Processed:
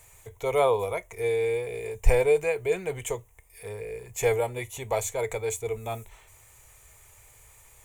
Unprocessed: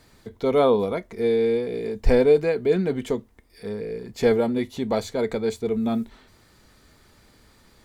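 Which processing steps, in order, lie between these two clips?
drawn EQ curve 120 Hz 0 dB, 230 Hz −26 dB, 440 Hz −5 dB, 970 Hz +1 dB, 1,500 Hz −7 dB, 2,400 Hz +5 dB, 4,700 Hz −12 dB, 6,700 Hz +11 dB

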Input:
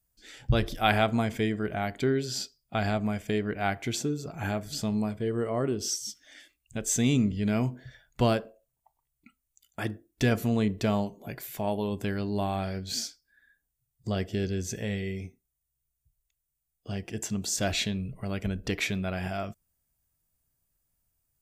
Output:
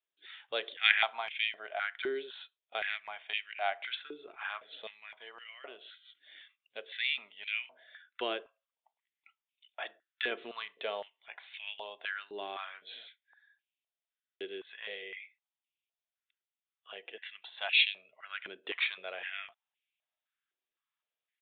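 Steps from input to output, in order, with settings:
first difference
downsampling to 8,000 Hz
buffer that repeats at 0:13.71, samples 2,048, times 14
high-pass on a step sequencer 3.9 Hz 370–2,500 Hz
level +7 dB

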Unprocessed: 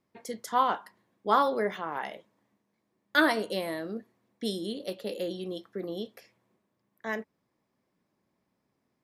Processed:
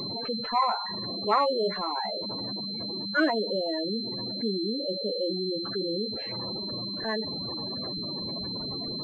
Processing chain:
converter with a step at zero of −29 dBFS
gate on every frequency bin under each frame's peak −10 dB strong
switching amplifier with a slow clock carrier 4,100 Hz

